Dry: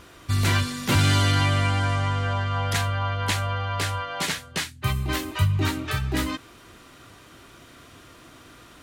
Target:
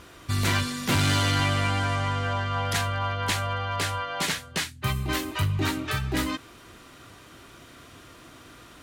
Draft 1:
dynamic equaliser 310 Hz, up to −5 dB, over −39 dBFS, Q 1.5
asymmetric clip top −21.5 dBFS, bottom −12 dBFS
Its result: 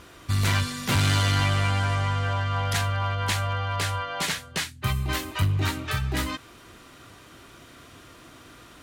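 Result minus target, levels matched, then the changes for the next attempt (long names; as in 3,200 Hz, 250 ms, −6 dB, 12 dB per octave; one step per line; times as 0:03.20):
250 Hz band −3.5 dB
change: dynamic equaliser 82 Hz, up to −5 dB, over −39 dBFS, Q 1.5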